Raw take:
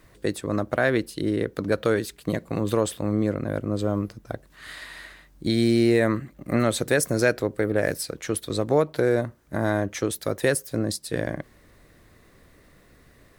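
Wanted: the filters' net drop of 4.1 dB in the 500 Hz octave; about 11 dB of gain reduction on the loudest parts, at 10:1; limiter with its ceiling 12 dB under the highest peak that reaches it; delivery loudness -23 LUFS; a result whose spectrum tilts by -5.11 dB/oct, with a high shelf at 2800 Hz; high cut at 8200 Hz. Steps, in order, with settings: LPF 8200 Hz; bell 500 Hz -5 dB; high shelf 2800 Hz -4.5 dB; compressor 10:1, threshold -29 dBFS; gain +17.5 dB; limiter -10.5 dBFS

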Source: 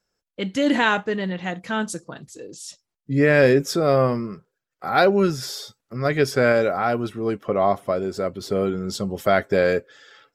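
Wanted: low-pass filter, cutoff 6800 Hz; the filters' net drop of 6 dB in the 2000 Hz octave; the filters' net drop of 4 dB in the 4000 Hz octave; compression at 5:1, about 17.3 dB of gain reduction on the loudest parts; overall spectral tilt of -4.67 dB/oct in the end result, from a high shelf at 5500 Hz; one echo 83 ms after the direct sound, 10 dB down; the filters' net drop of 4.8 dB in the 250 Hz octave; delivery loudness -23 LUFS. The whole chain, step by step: LPF 6800 Hz; bell 250 Hz -6.5 dB; bell 2000 Hz -8 dB; bell 4000 Hz -5.5 dB; high shelf 5500 Hz +7 dB; compressor 5:1, threshold -35 dBFS; echo 83 ms -10 dB; gain +14.5 dB

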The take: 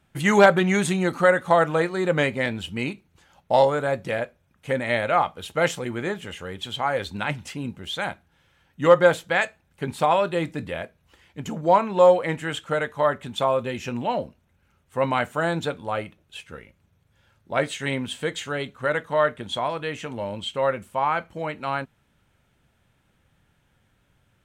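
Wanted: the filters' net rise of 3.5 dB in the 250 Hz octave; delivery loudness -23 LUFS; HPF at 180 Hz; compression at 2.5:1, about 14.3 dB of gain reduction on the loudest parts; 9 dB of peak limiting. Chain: HPF 180 Hz; bell 250 Hz +7 dB; compressor 2.5:1, threshold -31 dBFS; gain +11.5 dB; limiter -11.5 dBFS

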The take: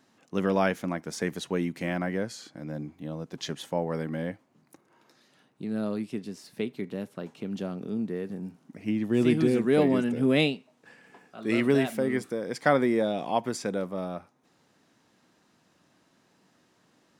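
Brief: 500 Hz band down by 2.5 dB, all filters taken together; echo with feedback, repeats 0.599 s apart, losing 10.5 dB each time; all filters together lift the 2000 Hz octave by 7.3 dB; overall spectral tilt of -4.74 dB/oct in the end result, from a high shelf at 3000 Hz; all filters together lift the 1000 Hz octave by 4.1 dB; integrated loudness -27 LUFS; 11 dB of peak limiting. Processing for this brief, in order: bell 500 Hz -5 dB; bell 1000 Hz +6 dB; bell 2000 Hz +9 dB; high shelf 3000 Hz -4 dB; limiter -15.5 dBFS; feedback echo 0.599 s, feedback 30%, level -10.5 dB; gain +3.5 dB

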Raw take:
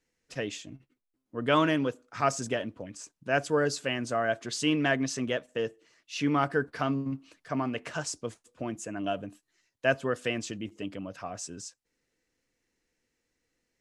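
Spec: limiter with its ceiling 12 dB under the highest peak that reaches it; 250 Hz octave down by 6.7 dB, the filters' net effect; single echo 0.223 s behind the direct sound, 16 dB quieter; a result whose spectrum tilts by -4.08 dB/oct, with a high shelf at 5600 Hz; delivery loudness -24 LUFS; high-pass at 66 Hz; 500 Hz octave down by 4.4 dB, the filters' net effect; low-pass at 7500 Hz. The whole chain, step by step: HPF 66 Hz; LPF 7500 Hz; bell 250 Hz -7 dB; bell 500 Hz -4 dB; high shelf 5600 Hz -4 dB; limiter -24 dBFS; echo 0.223 s -16 dB; gain +14 dB

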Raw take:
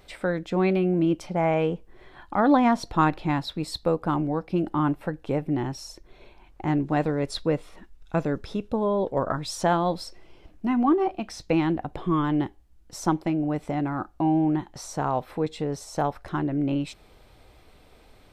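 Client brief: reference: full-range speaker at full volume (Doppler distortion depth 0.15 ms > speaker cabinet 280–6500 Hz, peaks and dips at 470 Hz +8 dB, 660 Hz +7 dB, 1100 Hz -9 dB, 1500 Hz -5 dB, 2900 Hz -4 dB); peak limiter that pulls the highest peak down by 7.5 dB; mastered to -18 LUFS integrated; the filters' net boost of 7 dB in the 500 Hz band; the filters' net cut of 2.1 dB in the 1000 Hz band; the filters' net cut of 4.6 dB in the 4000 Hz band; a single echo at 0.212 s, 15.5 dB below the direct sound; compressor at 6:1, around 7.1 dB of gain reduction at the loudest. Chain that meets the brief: bell 500 Hz +4 dB; bell 1000 Hz -7.5 dB; bell 4000 Hz -4 dB; compressor 6:1, threshold -23 dBFS; limiter -20.5 dBFS; echo 0.212 s -15.5 dB; Doppler distortion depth 0.15 ms; speaker cabinet 280–6500 Hz, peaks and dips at 470 Hz +8 dB, 660 Hz +7 dB, 1100 Hz -9 dB, 1500 Hz -5 dB, 2900 Hz -4 dB; gain +11.5 dB

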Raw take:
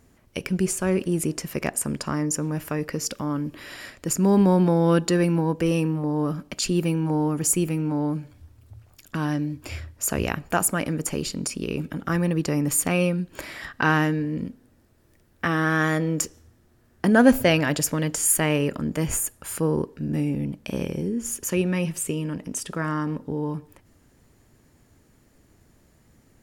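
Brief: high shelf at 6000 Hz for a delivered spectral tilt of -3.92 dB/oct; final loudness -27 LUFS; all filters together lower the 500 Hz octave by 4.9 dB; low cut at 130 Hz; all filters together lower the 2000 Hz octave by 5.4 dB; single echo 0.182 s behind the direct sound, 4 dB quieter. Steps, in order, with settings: HPF 130 Hz; bell 500 Hz -6 dB; bell 2000 Hz -7.5 dB; high shelf 6000 Hz +6.5 dB; echo 0.182 s -4 dB; gain -4 dB

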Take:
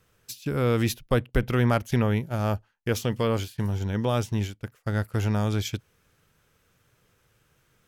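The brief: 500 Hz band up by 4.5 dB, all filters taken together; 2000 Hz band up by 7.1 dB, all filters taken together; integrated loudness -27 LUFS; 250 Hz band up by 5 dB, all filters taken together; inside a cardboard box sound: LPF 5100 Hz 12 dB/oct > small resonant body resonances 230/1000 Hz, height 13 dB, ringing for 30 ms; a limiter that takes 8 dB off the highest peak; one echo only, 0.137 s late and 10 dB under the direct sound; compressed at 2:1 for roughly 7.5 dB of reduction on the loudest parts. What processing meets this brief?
bell 250 Hz +5 dB; bell 500 Hz +3.5 dB; bell 2000 Hz +9 dB; compressor 2:1, threshold -28 dBFS; limiter -21 dBFS; LPF 5100 Hz 12 dB/oct; echo 0.137 s -10 dB; small resonant body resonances 230/1000 Hz, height 13 dB, ringing for 30 ms; gain -3 dB

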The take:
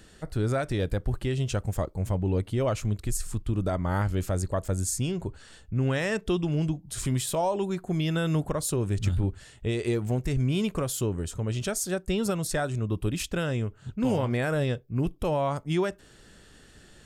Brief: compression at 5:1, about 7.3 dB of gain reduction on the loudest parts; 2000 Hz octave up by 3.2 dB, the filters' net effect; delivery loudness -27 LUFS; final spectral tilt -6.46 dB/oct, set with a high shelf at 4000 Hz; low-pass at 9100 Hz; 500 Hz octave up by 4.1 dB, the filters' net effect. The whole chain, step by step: LPF 9100 Hz; bell 500 Hz +5 dB; bell 2000 Hz +5.5 dB; high shelf 4000 Hz -7 dB; compressor 5:1, threshold -28 dBFS; gain +6 dB

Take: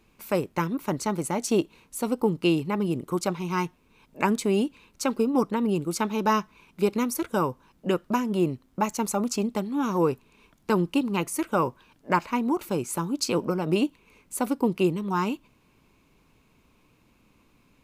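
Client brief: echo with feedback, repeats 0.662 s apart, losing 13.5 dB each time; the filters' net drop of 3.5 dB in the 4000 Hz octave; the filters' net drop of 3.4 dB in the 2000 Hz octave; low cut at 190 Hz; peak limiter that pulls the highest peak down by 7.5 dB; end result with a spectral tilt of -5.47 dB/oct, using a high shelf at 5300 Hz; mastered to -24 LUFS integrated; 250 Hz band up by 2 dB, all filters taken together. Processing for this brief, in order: HPF 190 Hz; bell 250 Hz +4.5 dB; bell 2000 Hz -4 dB; bell 4000 Hz -5.5 dB; high shelf 5300 Hz +4 dB; limiter -15.5 dBFS; feedback echo 0.662 s, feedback 21%, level -13.5 dB; gain +3 dB

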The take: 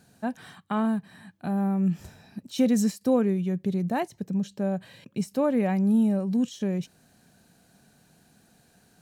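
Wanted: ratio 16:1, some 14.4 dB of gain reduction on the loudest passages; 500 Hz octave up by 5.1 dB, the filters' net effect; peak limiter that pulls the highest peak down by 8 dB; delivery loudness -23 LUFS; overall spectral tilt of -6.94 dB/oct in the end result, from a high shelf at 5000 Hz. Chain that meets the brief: bell 500 Hz +6 dB; high shelf 5000 Hz -5 dB; compressor 16:1, threshold -28 dBFS; gain +12.5 dB; limiter -14.5 dBFS

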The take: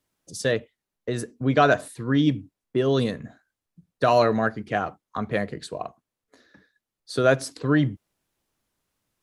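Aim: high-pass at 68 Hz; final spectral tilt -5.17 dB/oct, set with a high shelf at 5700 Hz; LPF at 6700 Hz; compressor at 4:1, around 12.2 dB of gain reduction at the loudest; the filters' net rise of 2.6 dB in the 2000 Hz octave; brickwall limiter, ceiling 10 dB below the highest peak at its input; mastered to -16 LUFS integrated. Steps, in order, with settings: HPF 68 Hz; LPF 6700 Hz; bell 2000 Hz +4.5 dB; high shelf 5700 Hz -8.5 dB; compressor 4:1, threshold -28 dBFS; gain +21 dB; limiter -4 dBFS

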